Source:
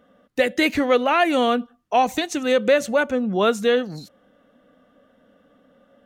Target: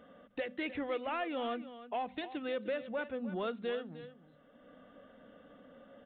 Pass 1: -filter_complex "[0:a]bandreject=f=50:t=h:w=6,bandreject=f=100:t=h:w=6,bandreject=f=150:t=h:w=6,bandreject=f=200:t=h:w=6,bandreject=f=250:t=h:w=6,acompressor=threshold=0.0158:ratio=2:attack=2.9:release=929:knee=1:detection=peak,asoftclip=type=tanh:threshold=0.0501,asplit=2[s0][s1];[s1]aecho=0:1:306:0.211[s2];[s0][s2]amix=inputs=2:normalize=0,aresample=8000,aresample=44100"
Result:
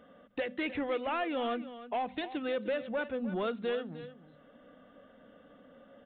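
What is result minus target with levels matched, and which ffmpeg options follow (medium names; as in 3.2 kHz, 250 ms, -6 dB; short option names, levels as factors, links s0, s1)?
compression: peak gain reduction -4.5 dB
-filter_complex "[0:a]bandreject=f=50:t=h:w=6,bandreject=f=100:t=h:w=6,bandreject=f=150:t=h:w=6,bandreject=f=200:t=h:w=6,bandreject=f=250:t=h:w=6,acompressor=threshold=0.00562:ratio=2:attack=2.9:release=929:knee=1:detection=peak,asoftclip=type=tanh:threshold=0.0501,asplit=2[s0][s1];[s1]aecho=0:1:306:0.211[s2];[s0][s2]amix=inputs=2:normalize=0,aresample=8000,aresample=44100"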